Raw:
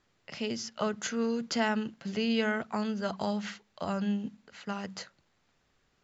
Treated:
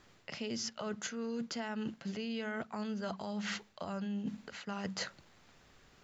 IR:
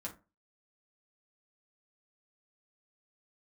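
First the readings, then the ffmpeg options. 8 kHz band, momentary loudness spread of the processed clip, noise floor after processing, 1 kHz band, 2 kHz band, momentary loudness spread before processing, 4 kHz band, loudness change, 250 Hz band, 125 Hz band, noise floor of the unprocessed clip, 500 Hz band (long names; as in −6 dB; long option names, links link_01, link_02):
can't be measured, 5 LU, −64 dBFS, −8.0 dB, −7.0 dB, 13 LU, −4.5 dB, −7.0 dB, −6.5 dB, −5.0 dB, −72 dBFS, −8.0 dB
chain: -af "alimiter=level_in=1.5dB:limit=-24dB:level=0:latency=1:release=254,volume=-1.5dB,areverse,acompressor=threshold=-45dB:ratio=12,areverse,volume=9.5dB"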